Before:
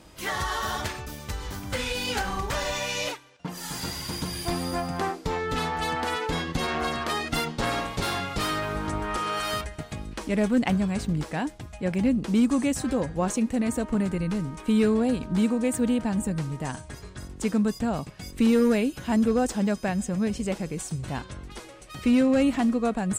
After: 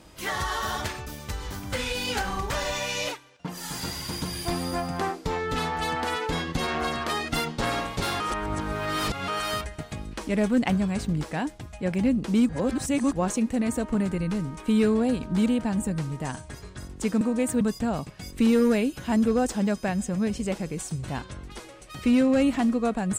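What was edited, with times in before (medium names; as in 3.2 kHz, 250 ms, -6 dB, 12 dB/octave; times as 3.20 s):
8.20–9.28 s: reverse
12.49–13.13 s: reverse
15.46–15.86 s: move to 17.61 s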